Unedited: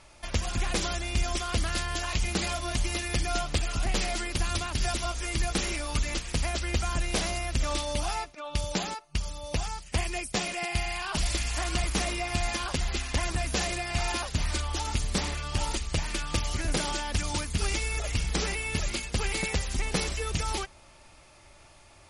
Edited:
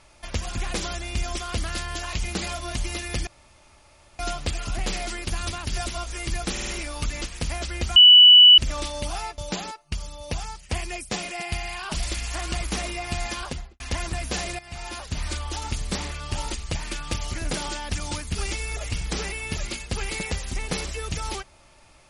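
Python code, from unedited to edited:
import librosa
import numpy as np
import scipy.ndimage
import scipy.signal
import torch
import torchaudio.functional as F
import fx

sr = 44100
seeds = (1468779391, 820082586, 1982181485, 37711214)

y = fx.studio_fade_out(x, sr, start_s=12.64, length_s=0.39)
y = fx.edit(y, sr, fx.insert_room_tone(at_s=3.27, length_s=0.92),
    fx.stutter(start_s=5.6, slice_s=0.05, count=4),
    fx.bleep(start_s=6.89, length_s=0.62, hz=2960.0, db=-7.0),
    fx.cut(start_s=8.31, length_s=0.3),
    fx.fade_in_from(start_s=13.82, length_s=0.68, floor_db=-14.0), tone=tone)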